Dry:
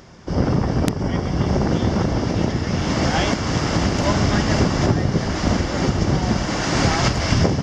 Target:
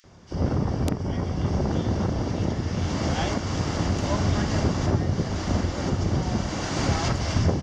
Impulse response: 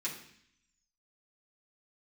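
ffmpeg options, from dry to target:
-filter_complex "[0:a]equalizer=frequency=88:width_type=o:width=0.38:gain=6.5,bandreject=frequency=5200:width=21,acrossover=split=2000[link_01][link_02];[link_01]adelay=40[link_03];[link_03][link_02]amix=inputs=2:normalize=0,volume=-6.5dB"

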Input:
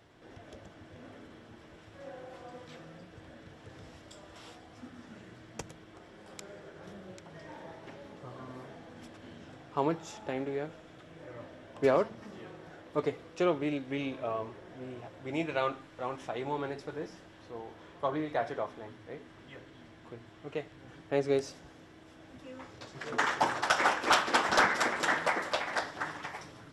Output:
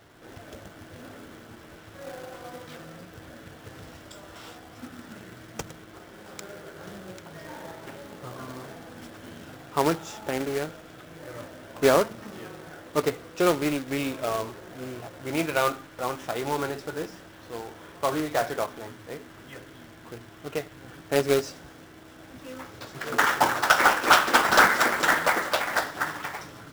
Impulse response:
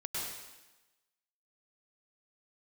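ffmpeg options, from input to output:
-af "acontrast=38,acrusher=bits=2:mode=log:mix=0:aa=0.000001,equalizer=frequency=1400:width_type=o:width=0.32:gain=4.5"

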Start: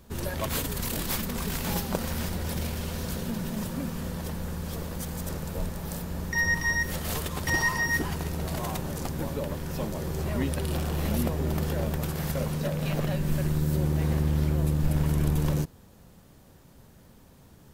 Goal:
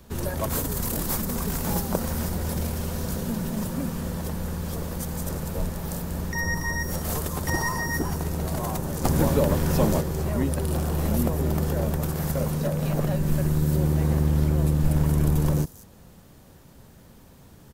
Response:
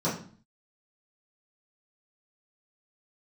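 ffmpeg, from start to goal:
-filter_complex "[0:a]acrossover=split=220|1600|5200[link_01][link_02][link_03][link_04];[link_03]acompressor=threshold=-53dB:ratio=6[link_05];[link_04]aecho=1:1:189:0.398[link_06];[link_01][link_02][link_05][link_06]amix=inputs=4:normalize=0,asplit=3[link_07][link_08][link_09];[link_07]afade=type=out:start_time=9.03:duration=0.02[link_10];[link_08]acontrast=89,afade=type=in:start_time=9.03:duration=0.02,afade=type=out:start_time=10:duration=0.02[link_11];[link_09]afade=type=in:start_time=10:duration=0.02[link_12];[link_10][link_11][link_12]amix=inputs=3:normalize=0,volume=3.5dB"

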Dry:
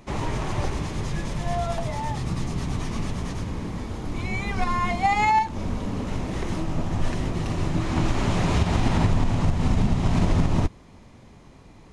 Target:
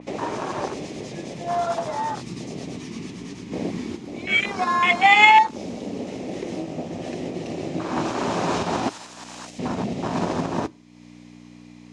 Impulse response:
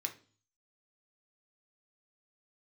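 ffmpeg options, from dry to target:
-filter_complex "[0:a]afwtdn=0.0398,asplit=3[link_01][link_02][link_03];[link_01]afade=type=out:start_time=3.51:duration=0.02[link_04];[link_02]acontrast=81,afade=type=in:start_time=3.51:duration=0.02,afade=type=out:start_time=3.95:duration=0.02[link_05];[link_03]afade=type=in:start_time=3.95:duration=0.02[link_06];[link_04][link_05][link_06]amix=inputs=3:normalize=0,asettb=1/sr,asplit=3[link_07][link_08][link_09];[link_07]atrim=end=8.894[link_10];[link_08]atrim=start=8.89:end=9.59,asetpts=PTS-STARTPTS,afade=type=in:duration=0.004:curve=qsin,afade=type=out:start_time=0.696:duration=0.004:curve=qsin,aderivative[link_11];[link_09]atrim=start=9.586[link_12];[link_10][link_11]acrossfade=duration=0.004:curve1=hsin:curve2=qsin[link_13];[link_13][link_12]acrossfade=duration=0.004:curve1=qsin:curve2=hsin,aeval=exprs='val(0)+0.00794*(sin(2*PI*60*n/s)+sin(2*PI*2*60*n/s)/2+sin(2*PI*3*60*n/s)/3+sin(2*PI*4*60*n/s)/4+sin(2*PI*5*60*n/s)/5)':channel_layout=same,acompressor=mode=upward:threshold=-28dB:ratio=2.5,aexciter=amount=2.5:drive=6:freq=2000,highpass=310,lowpass=5600,asplit=2[link_14][link_15];[1:a]atrim=start_sample=2205[link_16];[link_15][link_16]afir=irnorm=-1:irlink=0,volume=-15dB[link_17];[link_14][link_17]amix=inputs=2:normalize=0,adynamicequalizer=threshold=0.00891:dfrequency=3200:dqfactor=0.7:tfrequency=3200:tqfactor=0.7:attack=5:release=100:ratio=0.375:range=3.5:mode=boostabove:tftype=highshelf,volume=5dB"

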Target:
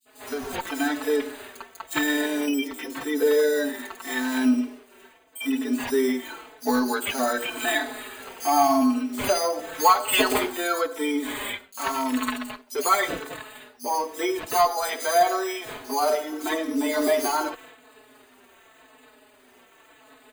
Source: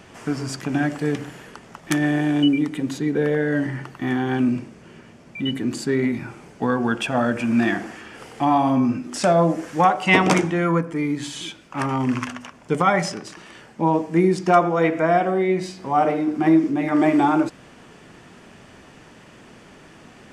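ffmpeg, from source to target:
ffmpeg -i in.wav -filter_complex "[0:a]agate=range=-33dB:threshold=-38dB:ratio=3:detection=peak,afftfilt=real='re*between(b*sr/4096,240,9200)':imag='im*between(b*sr/4096,240,9200)':win_size=4096:overlap=0.75,equalizer=frequency=340:width=1.3:gain=-5,aecho=1:1:4.6:0.95,asplit=2[link_01][link_02];[link_02]acompressor=threshold=-33dB:ratio=12,volume=-1dB[link_03];[link_01][link_03]amix=inputs=2:normalize=0,acrusher=samples=8:mix=1:aa=0.000001,asoftclip=type=tanh:threshold=-6.5dB,acrossover=split=4700[link_04][link_05];[link_04]adelay=50[link_06];[link_06][link_05]amix=inputs=2:normalize=0,asplit=2[link_07][link_08];[link_08]adelay=4.2,afreqshift=-0.89[link_09];[link_07][link_09]amix=inputs=2:normalize=1" out.wav

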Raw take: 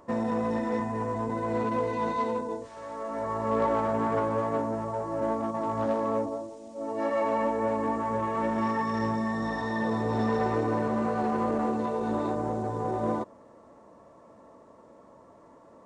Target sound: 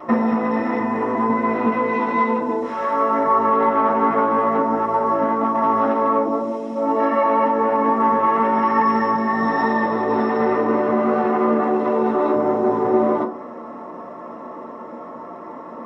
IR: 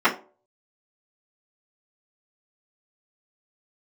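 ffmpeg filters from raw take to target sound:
-filter_complex "[0:a]acompressor=threshold=-33dB:ratio=6[link_01];[1:a]atrim=start_sample=2205[link_02];[link_01][link_02]afir=irnorm=-1:irlink=0"

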